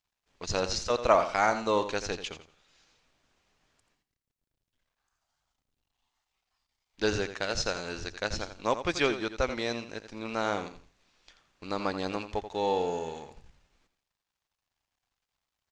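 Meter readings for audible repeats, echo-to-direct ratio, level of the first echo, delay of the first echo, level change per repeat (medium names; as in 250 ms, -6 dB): 2, -10.5 dB, -11.0 dB, 85 ms, -12.0 dB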